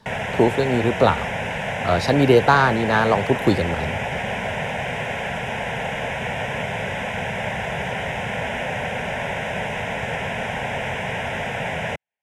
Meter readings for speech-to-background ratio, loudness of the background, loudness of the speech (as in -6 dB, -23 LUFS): 6.5 dB, -26.0 LUFS, -19.5 LUFS